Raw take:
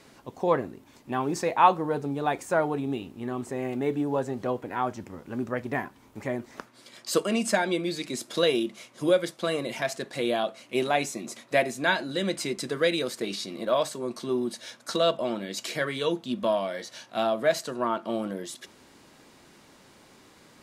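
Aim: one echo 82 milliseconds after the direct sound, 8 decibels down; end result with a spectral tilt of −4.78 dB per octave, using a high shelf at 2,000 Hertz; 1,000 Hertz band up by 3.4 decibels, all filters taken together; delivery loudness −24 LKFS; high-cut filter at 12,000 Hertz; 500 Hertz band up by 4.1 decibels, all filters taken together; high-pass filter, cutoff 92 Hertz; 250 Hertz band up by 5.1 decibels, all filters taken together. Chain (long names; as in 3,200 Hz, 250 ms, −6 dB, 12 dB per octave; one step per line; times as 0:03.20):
high-pass filter 92 Hz
low-pass filter 12,000 Hz
parametric band 250 Hz +5.5 dB
parametric band 500 Hz +3 dB
parametric band 1,000 Hz +4.5 dB
high-shelf EQ 2,000 Hz −7.5 dB
single-tap delay 82 ms −8 dB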